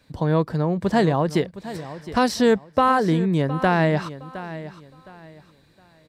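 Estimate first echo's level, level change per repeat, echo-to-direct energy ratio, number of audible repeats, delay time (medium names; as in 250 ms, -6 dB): -14.5 dB, -11.0 dB, -14.0 dB, 2, 714 ms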